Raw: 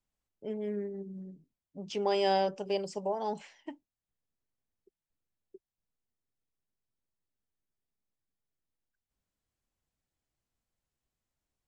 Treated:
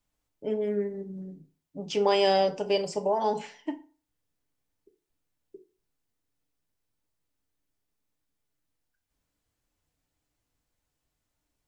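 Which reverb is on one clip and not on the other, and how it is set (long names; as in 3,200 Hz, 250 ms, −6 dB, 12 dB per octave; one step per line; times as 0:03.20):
feedback delay network reverb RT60 0.39 s, low-frequency decay 0.95×, high-frequency decay 0.7×, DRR 5 dB
level +6 dB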